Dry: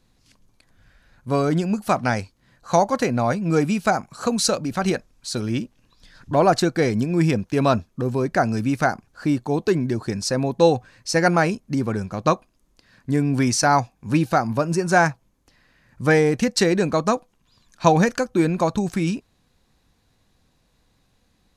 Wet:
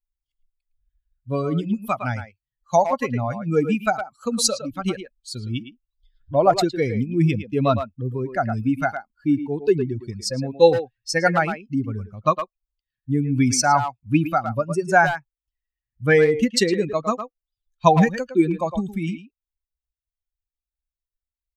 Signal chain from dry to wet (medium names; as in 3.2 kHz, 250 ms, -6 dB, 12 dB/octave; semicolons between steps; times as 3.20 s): expander on every frequency bin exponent 2; speakerphone echo 110 ms, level -8 dB; trim +4.5 dB